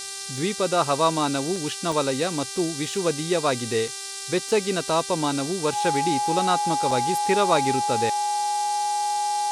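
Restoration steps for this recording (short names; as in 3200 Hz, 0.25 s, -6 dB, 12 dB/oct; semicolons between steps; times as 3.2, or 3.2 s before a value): de-hum 393.2 Hz, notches 15; notch 830 Hz, Q 30; interpolate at 1.56/1.92/3.88/6.91, 2.8 ms; noise print and reduce 30 dB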